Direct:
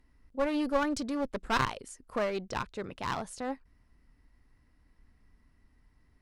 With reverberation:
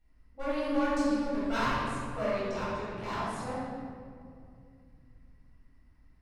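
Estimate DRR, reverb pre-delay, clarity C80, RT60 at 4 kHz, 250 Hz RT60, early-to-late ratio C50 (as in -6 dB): -12.0 dB, 6 ms, -1.5 dB, 1.3 s, 3.6 s, -4.0 dB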